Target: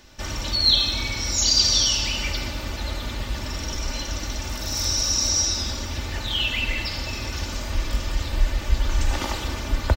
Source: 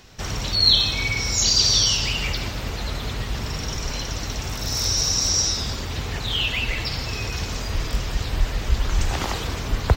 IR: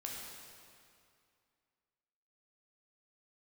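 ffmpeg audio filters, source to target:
-filter_complex "[0:a]aecho=1:1:3.4:0.58,asplit=2[a][b];[1:a]atrim=start_sample=2205[c];[b][c]afir=irnorm=-1:irlink=0,volume=-4.5dB[d];[a][d]amix=inputs=2:normalize=0,volume=-5.5dB"

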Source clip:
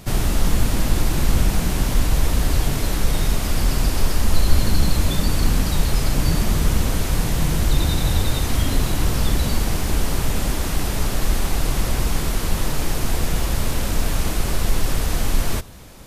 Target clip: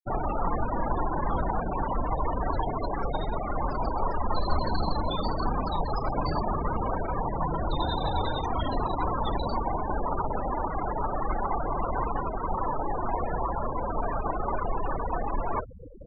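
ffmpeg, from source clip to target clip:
-filter_complex "[0:a]asplit=2[a][b];[b]adelay=39,volume=-11dB[c];[a][c]amix=inputs=2:normalize=0,areverse,acompressor=mode=upward:threshold=-19dB:ratio=2.5,areverse,bass=f=250:g=-8,treble=f=4k:g=-4,afftfilt=real='re*gte(hypot(re,im),0.0708)':imag='im*gte(hypot(re,im),0.0708)':win_size=1024:overlap=0.75,equalizer=f=990:t=o:w=1.3:g=15,volume=-5dB"

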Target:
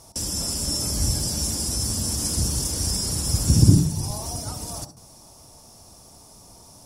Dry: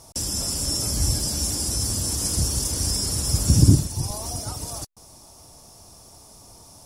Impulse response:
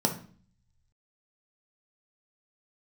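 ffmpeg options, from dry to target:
-filter_complex "[0:a]asplit=2[a][b];[1:a]atrim=start_sample=2205,adelay=65[c];[b][c]afir=irnorm=-1:irlink=0,volume=-21dB[d];[a][d]amix=inputs=2:normalize=0,volume=-1dB"

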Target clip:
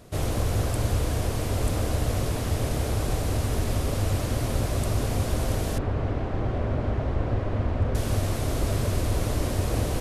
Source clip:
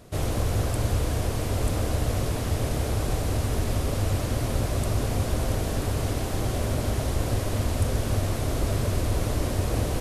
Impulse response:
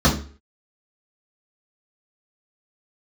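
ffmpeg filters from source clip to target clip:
-filter_complex "[0:a]asettb=1/sr,asplit=3[a][b][c];[a]atrim=end=5.784[d];[b]atrim=start=5.78:end=7.95,asetpts=PTS-STARTPTS,afade=t=in:d=0.004:c=qsin,afade=t=out:st=2.166:d=0.004:c=qsin,lowpass=1.9k[e];[c]atrim=start=7.946[f];[d][e]acrossfade=d=0.004:c1=hsin:c2=qsin[g];[g][f]acrossfade=d=0.004:c1=qsin:c2=hsin"

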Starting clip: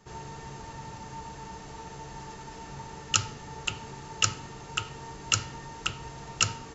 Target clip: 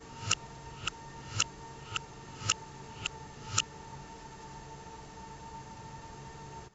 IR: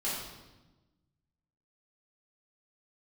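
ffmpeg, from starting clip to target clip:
-af "areverse,volume=-5dB"

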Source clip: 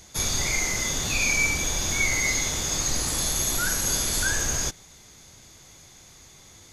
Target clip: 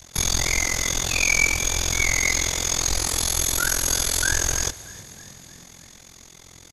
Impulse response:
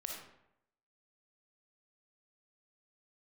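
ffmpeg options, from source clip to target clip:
-filter_complex "[0:a]tremolo=f=43:d=1,asplit=6[a][b][c][d][e][f];[b]adelay=315,afreqshift=41,volume=-19.5dB[g];[c]adelay=630,afreqshift=82,volume=-23.8dB[h];[d]adelay=945,afreqshift=123,volume=-28.1dB[i];[e]adelay=1260,afreqshift=164,volume=-32.4dB[j];[f]adelay=1575,afreqshift=205,volume=-36.7dB[k];[a][g][h][i][j][k]amix=inputs=6:normalize=0,adynamicequalizer=threshold=0.002:dfrequency=190:dqfactor=1.7:tfrequency=190:tqfactor=1.7:attack=5:release=100:ratio=0.375:range=3.5:mode=cutabove:tftype=bell,volume=7dB"

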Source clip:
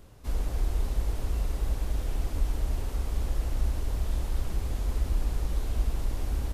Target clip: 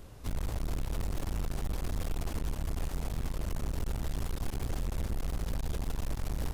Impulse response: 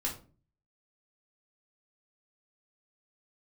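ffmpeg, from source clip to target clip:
-af "volume=31.5dB,asoftclip=hard,volume=-31.5dB,aeval=exprs='0.0282*(cos(1*acos(clip(val(0)/0.0282,-1,1)))-cos(1*PI/2))+0.0126*(cos(2*acos(clip(val(0)/0.0282,-1,1)))-cos(2*PI/2))+0.00501*(cos(4*acos(clip(val(0)/0.0282,-1,1)))-cos(4*PI/2))+0.00224*(cos(5*acos(clip(val(0)/0.0282,-1,1)))-cos(5*PI/2))':c=same"

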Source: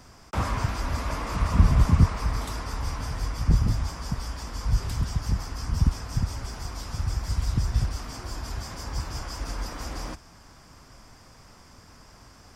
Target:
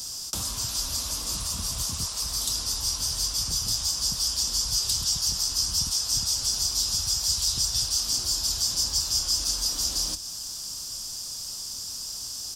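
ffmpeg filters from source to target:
-filter_complex "[0:a]acrossover=split=420|7000[a][b][c];[a]acompressor=threshold=-35dB:ratio=4[d];[b]acompressor=threshold=-43dB:ratio=4[e];[c]acompressor=threshold=-60dB:ratio=4[f];[d][e][f]amix=inputs=3:normalize=0,asplit=2[g][h];[h]adelay=26,volume=-13dB[i];[g][i]amix=inputs=2:normalize=0,aexciter=amount=15.2:drive=6.2:freq=3.3k,volume=-2.5dB"

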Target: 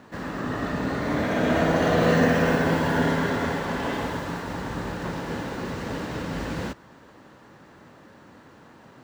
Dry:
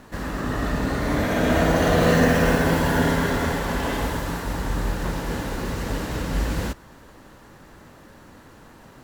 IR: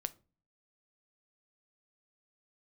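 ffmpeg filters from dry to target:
-af "highpass=110,equalizer=f=13k:w=0.53:g=-13,volume=-1.5dB"

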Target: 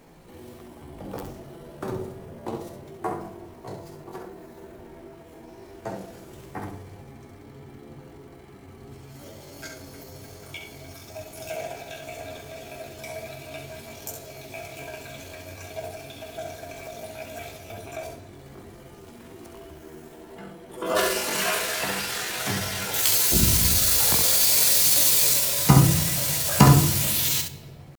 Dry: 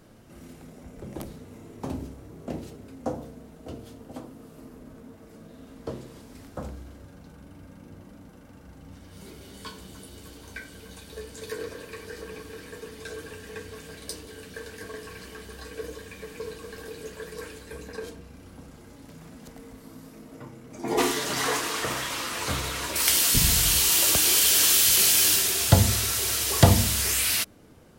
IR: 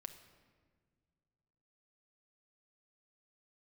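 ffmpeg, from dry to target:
-filter_complex "[0:a]asetrate=64194,aresample=44100,atempo=0.686977,asplit=2[a][b];[1:a]atrim=start_sample=2205,lowshelf=f=71:g=11,adelay=66[c];[b][c]afir=irnorm=-1:irlink=0,volume=-1.5dB[d];[a][d]amix=inputs=2:normalize=0,volume=1dB"

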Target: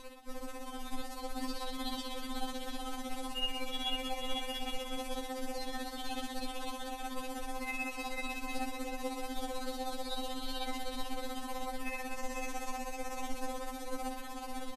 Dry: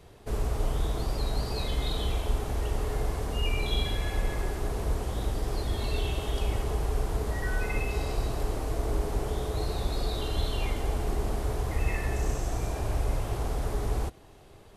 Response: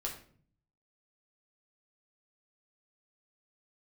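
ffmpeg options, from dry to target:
-af "areverse,acompressor=threshold=-42dB:ratio=6,areverse,aecho=1:1:490|833|1073|1241|1359:0.631|0.398|0.251|0.158|0.1,tremolo=f=16:d=0.73,afftfilt=real='re*3.46*eq(mod(b,12),0)':imag='im*3.46*eq(mod(b,12),0)':win_size=2048:overlap=0.75,volume=15dB"

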